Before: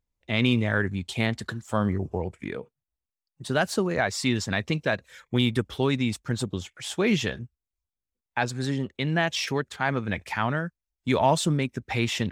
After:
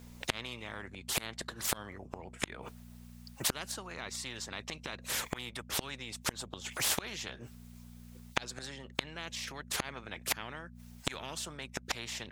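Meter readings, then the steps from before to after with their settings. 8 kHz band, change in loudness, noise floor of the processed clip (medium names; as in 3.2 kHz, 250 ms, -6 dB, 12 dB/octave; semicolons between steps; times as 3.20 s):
+0.5 dB, -10.5 dB, -53 dBFS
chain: inverted gate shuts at -23 dBFS, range -37 dB; mains buzz 60 Hz, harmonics 4, -70 dBFS -5 dB/octave; spectrum-flattening compressor 4:1; trim +7 dB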